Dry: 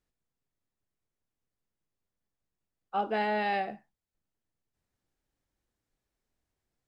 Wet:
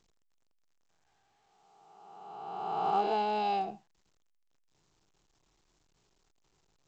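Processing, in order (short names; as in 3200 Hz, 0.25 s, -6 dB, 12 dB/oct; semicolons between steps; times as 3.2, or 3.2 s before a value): spectral swells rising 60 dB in 1.95 s; fixed phaser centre 370 Hz, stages 8; A-law 128 kbps 16000 Hz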